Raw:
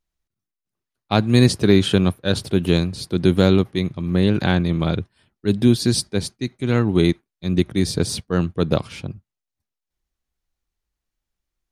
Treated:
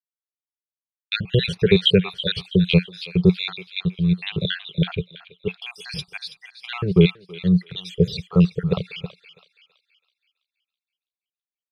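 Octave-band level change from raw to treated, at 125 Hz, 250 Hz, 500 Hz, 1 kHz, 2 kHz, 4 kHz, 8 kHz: -1.5 dB, -3.0 dB, -2.5 dB, -10.0 dB, -0.5 dB, +2.0 dB, under -15 dB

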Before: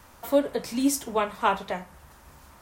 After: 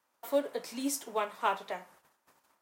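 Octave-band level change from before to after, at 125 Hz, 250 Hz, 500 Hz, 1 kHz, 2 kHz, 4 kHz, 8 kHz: under -15 dB, -11.0 dB, -7.0 dB, -6.5 dB, -6.5 dB, -6.5 dB, -6.5 dB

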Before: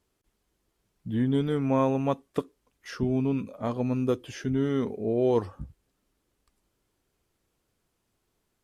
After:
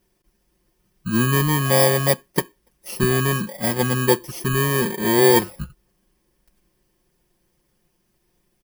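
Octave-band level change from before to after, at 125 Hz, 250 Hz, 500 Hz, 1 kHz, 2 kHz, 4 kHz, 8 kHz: +9.0 dB, +3.5 dB, +7.5 dB, +10.0 dB, +19.5 dB, +18.5 dB, n/a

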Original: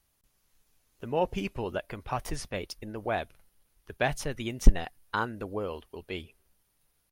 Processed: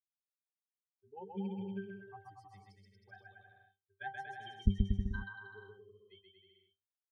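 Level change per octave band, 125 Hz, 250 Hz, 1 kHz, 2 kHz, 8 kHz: -5.0 dB, -5.5 dB, -14.0 dB, -11.0 dB, under -30 dB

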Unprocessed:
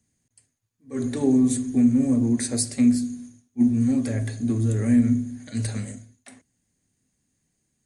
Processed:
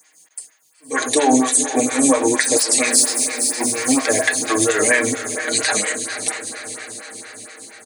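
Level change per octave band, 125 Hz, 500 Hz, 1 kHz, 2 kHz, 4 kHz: -12.5 dB, +13.0 dB, n/a, +23.5 dB, +18.0 dB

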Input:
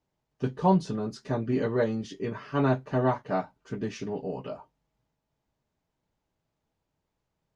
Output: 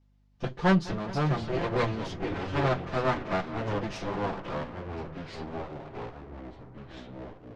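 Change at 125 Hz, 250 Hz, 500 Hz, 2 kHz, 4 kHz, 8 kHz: +1.0 dB, -1.5 dB, -1.0 dB, +5.5 dB, +6.5 dB, n/a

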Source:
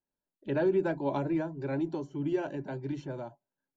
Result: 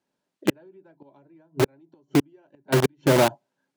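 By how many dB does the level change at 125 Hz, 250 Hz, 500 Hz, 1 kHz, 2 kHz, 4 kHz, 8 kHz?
+9.0 dB, +5.5 dB, +6.5 dB, +9.5 dB, +11.0 dB, +20.5 dB, n/a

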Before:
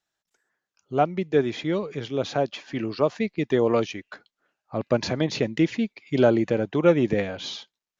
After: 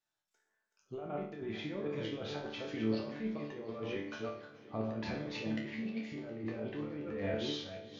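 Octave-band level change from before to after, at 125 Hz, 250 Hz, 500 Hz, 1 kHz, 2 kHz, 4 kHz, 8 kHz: -14.0 dB, -13.0 dB, -16.5 dB, -17.0 dB, -11.5 dB, -10.0 dB, n/a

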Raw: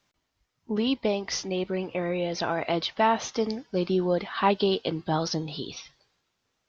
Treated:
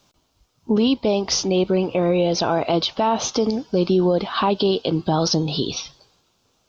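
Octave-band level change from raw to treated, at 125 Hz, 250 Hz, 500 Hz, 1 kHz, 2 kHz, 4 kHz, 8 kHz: +8.5 dB, +8.5 dB, +7.0 dB, +4.0 dB, +1.0 dB, +8.0 dB, n/a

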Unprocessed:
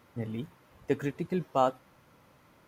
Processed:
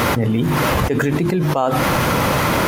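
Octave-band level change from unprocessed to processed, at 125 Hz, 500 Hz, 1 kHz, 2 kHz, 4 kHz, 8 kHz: +20.5 dB, +13.5 dB, +15.0 dB, +25.0 dB, +25.0 dB, n/a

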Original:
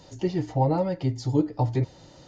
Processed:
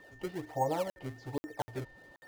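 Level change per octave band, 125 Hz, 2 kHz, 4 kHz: -18.0, 0.0, -7.0 dB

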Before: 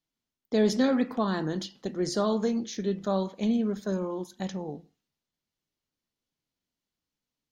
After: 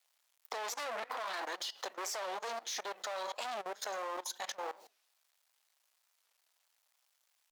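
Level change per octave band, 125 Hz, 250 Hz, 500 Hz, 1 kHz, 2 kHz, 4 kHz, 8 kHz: under -35 dB, -31.0 dB, -13.0 dB, -2.0 dB, -1.0 dB, -2.0 dB, +0.5 dB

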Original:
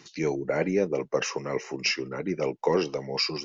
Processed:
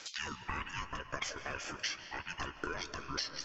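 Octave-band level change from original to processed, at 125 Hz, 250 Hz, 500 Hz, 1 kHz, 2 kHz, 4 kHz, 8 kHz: -12.5 dB, -18.0 dB, -22.0 dB, -6.0 dB, -5.5 dB, -8.0 dB, n/a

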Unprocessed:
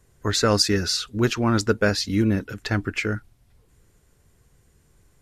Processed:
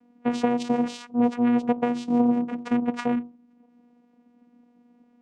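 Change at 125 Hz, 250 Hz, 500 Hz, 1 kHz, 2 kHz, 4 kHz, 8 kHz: -16.5 dB, +2.5 dB, -3.5 dB, +1.0 dB, -11.0 dB, -17.5 dB, under -15 dB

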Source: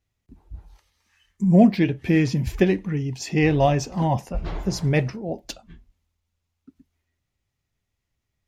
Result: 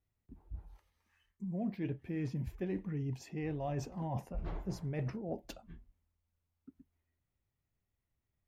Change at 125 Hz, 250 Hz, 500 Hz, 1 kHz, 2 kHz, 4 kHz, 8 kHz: -16.0, -18.5, -18.5, -19.0, -22.0, -21.5, -20.0 dB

